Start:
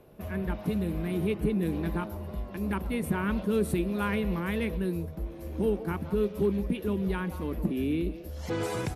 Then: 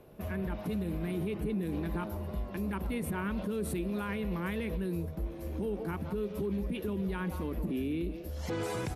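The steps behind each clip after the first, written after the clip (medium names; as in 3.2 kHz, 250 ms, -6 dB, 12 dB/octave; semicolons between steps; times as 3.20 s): peak limiter -26.5 dBFS, peak gain reduction 9 dB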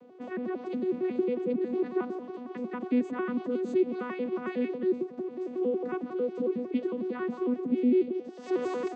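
vocoder on a broken chord bare fifth, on B3, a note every 91 ms; trim +6 dB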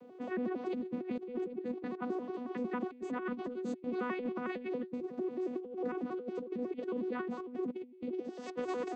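compressor with a negative ratio -33 dBFS, ratio -0.5; trim -4 dB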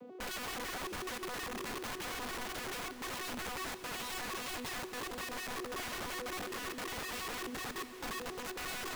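peak limiter -31 dBFS, peak gain reduction 6.5 dB; integer overflow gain 39 dB; echo that smears into a reverb 615 ms, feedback 42%, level -12 dB; trim +3 dB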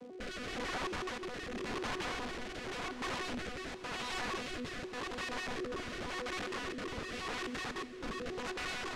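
crackle 290 per s -49 dBFS; rotary cabinet horn 0.9 Hz; distance through air 85 m; trim +4.5 dB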